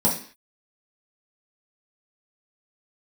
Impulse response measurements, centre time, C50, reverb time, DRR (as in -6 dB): 25 ms, 7.5 dB, 0.45 s, -5.5 dB